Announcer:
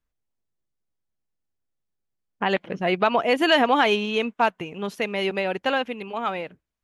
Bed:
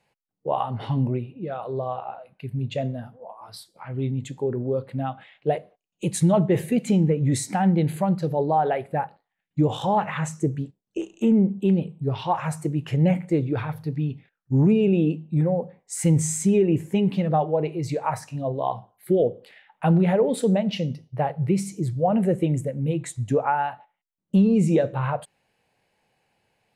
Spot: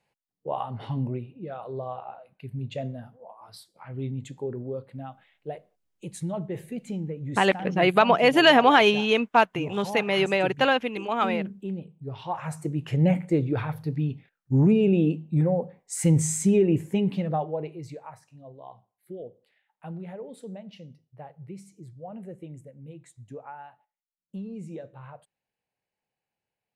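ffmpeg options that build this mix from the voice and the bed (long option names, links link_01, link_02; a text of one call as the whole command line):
ffmpeg -i stem1.wav -i stem2.wav -filter_complex "[0:a]adelay=4950,volume=2dB[link_01];[1:a]volume=6dB,afade=type=out:start_time=4.31:duration=0.91:silence=0.446684,afade=type=in:start_time=11.99:duration=1.12:silence=0.266073,afade=type=out:start_time=16.67:duration=1.46:silence=0.125893[link_02];[link_01][link_02]amix=inputs=2:normalize=0" out.wav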